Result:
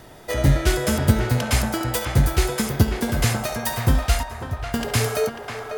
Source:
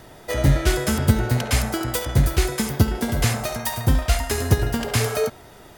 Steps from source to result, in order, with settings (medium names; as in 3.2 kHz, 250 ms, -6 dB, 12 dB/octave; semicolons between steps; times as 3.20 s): 4.23–4.74 s: amplifier tone stack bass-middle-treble 10-0-1; on a send: band-passed feedback delay 544 ms, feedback 43%, band-pass 1 kHz, level -4 dB